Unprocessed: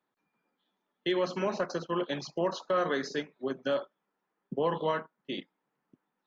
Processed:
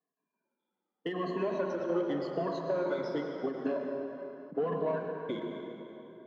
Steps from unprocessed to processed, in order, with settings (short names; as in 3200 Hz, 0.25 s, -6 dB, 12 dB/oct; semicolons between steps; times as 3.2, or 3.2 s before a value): moving spectral ripple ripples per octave 1.5, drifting -0.86 Hz, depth 24 dB; sample leveller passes 2; compressor, threshold -23 dBFS, peak gain reduction 8 dB; band-pass 390 Hz, Q 0.62; plate-style reverb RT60 3.5 s, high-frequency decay 0.65×, pre-delay 85 ms, DRR 2.5 dB; ending taper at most 110 dB/s; gain -5.5 dB